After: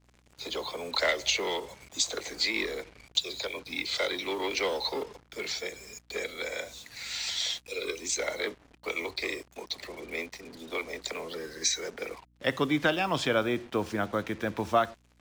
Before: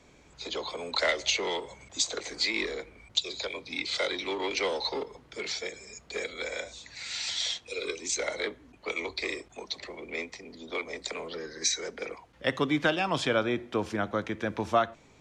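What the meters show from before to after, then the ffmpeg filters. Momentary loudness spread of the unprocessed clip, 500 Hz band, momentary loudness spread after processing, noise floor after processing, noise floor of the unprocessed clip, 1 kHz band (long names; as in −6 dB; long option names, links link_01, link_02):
12 LU, 0.0 dB, 12 LU, −64 dBFS, −58 dBFS, 0.0 dB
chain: -af "acrusher=bits=7:mix=0:aa=0.5,aeval=exprs='val(0)+0.000631*(sin(2*PI*60*n/s)+sin(2*PI*2*60*n/s)/2+sin(2*PI*3*60*n/s)/3+sin(2*PI*4*60*n/s)/4+sin(2*PI*5*60*n/s)/5)':channel_layout=same"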